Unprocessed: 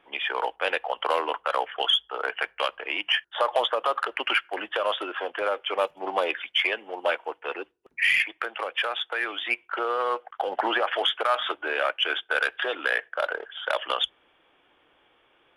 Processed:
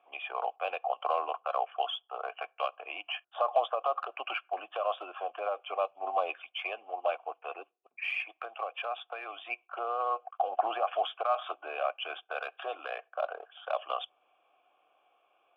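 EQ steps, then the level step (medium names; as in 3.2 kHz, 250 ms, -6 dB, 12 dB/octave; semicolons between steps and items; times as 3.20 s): dynamic bell 2.1 kHz, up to -3 dB, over -38 dBFS, Q 1; vowel filter a; +4.0 dB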